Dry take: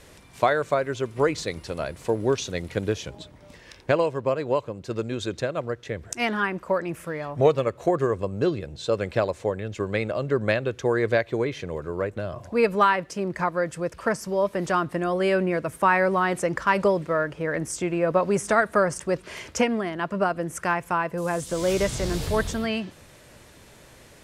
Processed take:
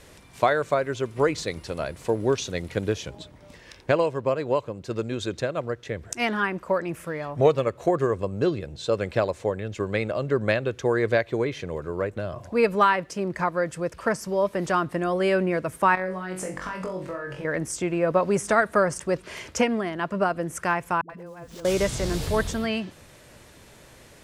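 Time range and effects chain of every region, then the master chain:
0:15.95–0:17.45: downward compressor 16 to 1, threshold −30 dBFS + flutter between parallel walls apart 3.7 metres, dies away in 0.36 s
0:21.01–0:21.65: running median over 5 samples + downward compressor 20 to 1, threshold −36 dBFS + all-pass dispersion highs, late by 87 ms, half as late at 340 Hz
whole clip: no processing

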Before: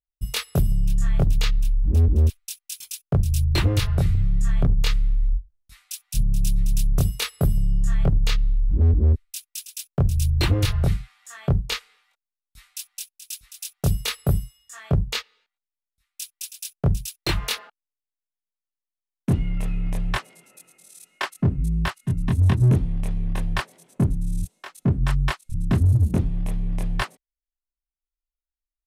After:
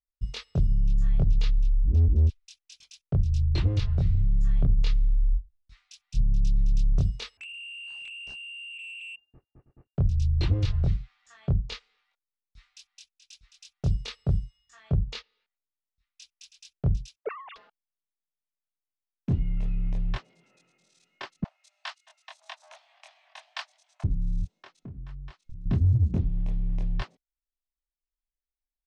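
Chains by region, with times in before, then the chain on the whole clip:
0:07.37–0:09.95: voice inversion scrambler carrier 2,800 Hz + downward compressor 10 to 1, threshold −18 dBFS + gain into a clipping stage and back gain 27.5 dB
0:17.16–0:17.56: three sine waves on the formant tracks + low-pass filter 1,000 Hz + transient designer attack +2 dB, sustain +9 dB
0:21.44–0:24.04: Butterworth high-pass 620 Hz 96 dB per octave + high-shelf EQ 2,100 Hz +9 dB
0:24.76–0:25.66: downward compressor, threshold −34 dBFS + notch filter 540 Hz, Q 14
whole clip: dynamic equaliser 1,500 Hz, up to −5 dB, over −45 dBFS, Q 0.71; low-pass filter 5,600 Hz 24 dB per octave; low-shelf EQ 150 Hz +7.5 dB; level −9 dB

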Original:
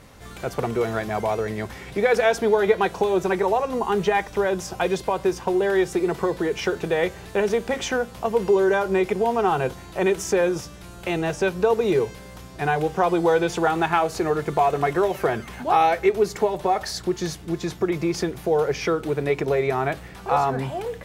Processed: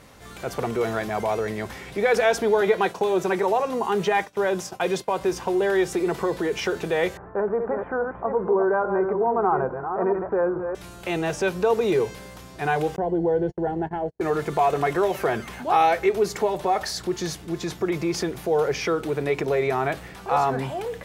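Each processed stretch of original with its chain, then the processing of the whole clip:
0:02.61–0:05.21: high-pass filter 110 Hz + downward expander −31 dBFS
0:07.17–0:10.75: delay that plays each chunk backwards 422 ms, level −7 dB + Butterworth low-pass 1,400 Hz + tilt shelving filter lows −3.5 dB, about 700 Hz
0:12.96–0:14.21: moving average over 36 samples + low-shelf EQ 99 Hz +7.5 dB + noise gate −29 dBFS, range −47 dB
whole clip: low-shelf EQ 140 Hz −5.5 dB; transient designer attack −2 dB, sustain +2 dB

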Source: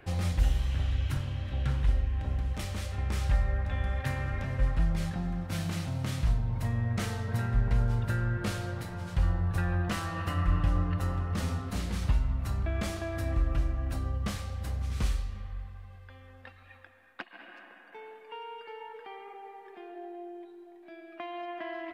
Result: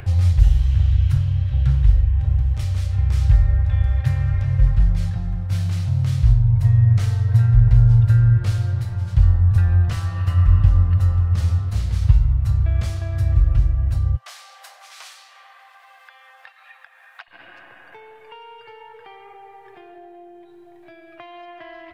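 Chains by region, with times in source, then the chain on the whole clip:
0:14.16–0:17.28: Chebyshev high-pass filter 680 Hz, order 4 + upward compression, threshold −57 dBFS
whole clip: dynamic equaliser 4,900 Hz, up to +4 dB, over −57 dBFS, Q 1.1; upward compression, threshold −34 dBFS; low shelf with overshoot 160 Hz +11 dB, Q 3; level −1 dB

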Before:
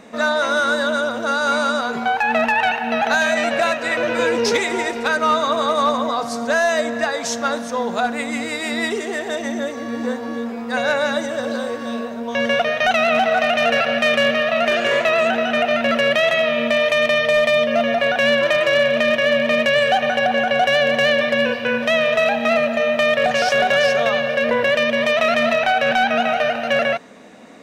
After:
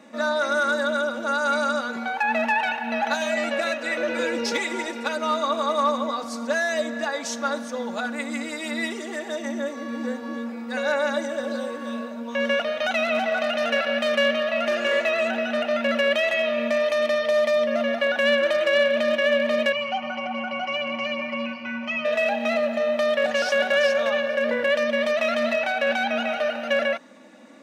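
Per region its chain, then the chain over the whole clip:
0:19.72–0:22.05: high-frequency loss of the air 180 metres + phaser with its sweep stopped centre 2,500 Hz, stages 8 + comb filter 5.5 ms, depth 89%
whole clip: high-pass filter 120 Hz 24 dB per octave; comb filter 3.5 ms, depth 76%; level −8 dB

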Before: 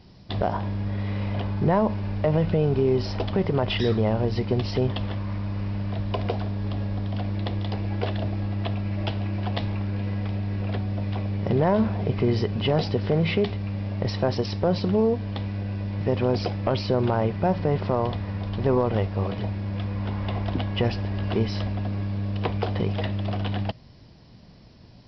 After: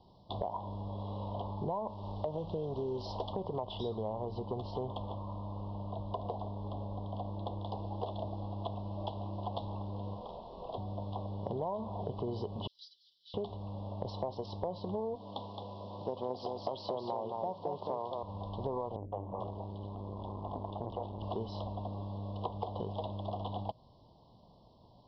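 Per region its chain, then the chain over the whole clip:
0:01.87–0:03.33: high-shelf EQ 2,800 Hz +7.5 dB + highs frequency-modulated by the lows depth 0.25 ms
0:04.03–0:07.66: hard clipping −18 dBFS + high-shelf EQ 4,000 Hz −8 dB
0:10.13–0:10.78: mains-hum notches 50/100/150/200/250/300/350/400 Hz + double-tracking delay 44 ms −7 dB
0:12.67–0:13.34: inverse Chebyshev high-pass filter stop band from 1,800 Hz + first difference + comb filter 5.6 ms, depth 61%
0:15.15–0:18.23: high-pass filter 170 Hz + high-shelf EQ 3,800 Hz +7.5 dB + single-tap delay 218 ms −5 dB
0:18.96–0:21.22: high-frequency loss of the air 64 metres + three-band delay without the direct sound lows, mids, highs 160/440 ms, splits 380/2,400 Hz + saturating transformer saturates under 410 Hz
whole clip: elliptic band-stop filter 1,000–3,400 Hz, stop band 40 dB; three-way crossover with the lows and the highs turned down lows −14 dB, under 560 Hz, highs −21 dB, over 2,800 Hz; downward compressor, threshold −34 dBFS; level +1 dB

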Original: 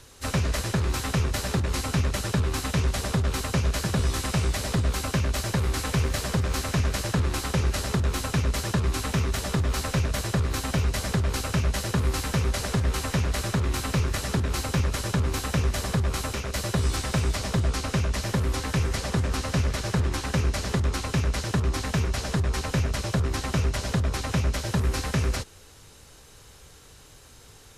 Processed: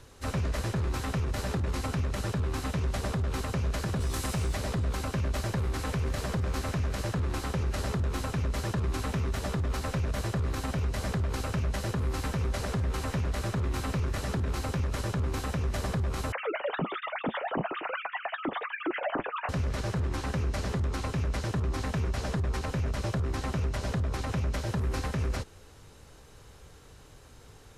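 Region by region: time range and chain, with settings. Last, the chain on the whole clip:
0:04.00–0:04.54: high-shelf EQ 5,900 Hz +10.5 dB + floating-point word with a short mantissa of 4 bits
0:16.32–0:19.49: three sine waves on the formant tracks + flanger 1.2 Hz, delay 5.9 ms, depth 1.9 ms, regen −43%
whole clip: high-shelf EQ 2,300 Hz −9 dB; brickwall limiter −22.5 dBFS

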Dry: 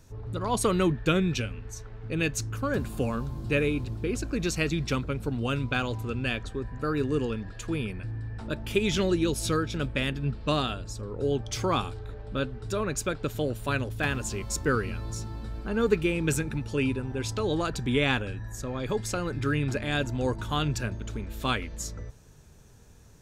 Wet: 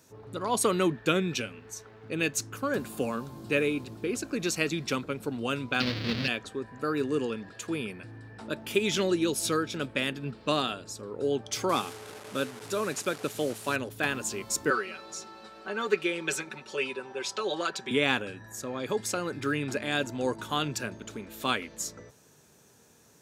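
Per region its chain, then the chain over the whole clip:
0:05.80–0:06.28: each half-wave held at its own peak + drawn EQ curve 220 Hz 0 dB, 350 Hz −10 dB, 530 Hz −9 dB, 850 Hz −17 dB, 1,900 Hz −3 dB, 4,600 Hz +3 dB, 7,600 Hz −28 dB + envelope flattener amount 100%
0:11.69–0:13.76: linear delta modulator 64 kbit/s, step −37 dBFS + high-pass filter 88 Hz
0:14.70–0:17.91: three-way crossover with the lows and the highs turned down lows −15 dB, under 410 Hz, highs −14 dB, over 7,100 Hz + comb filter 5.3 ms, depth 79%
whole clip: high-pass filter 220 Hz 12 dB per octave; high-shelf EQ 8,300 Hz +5.5 dB

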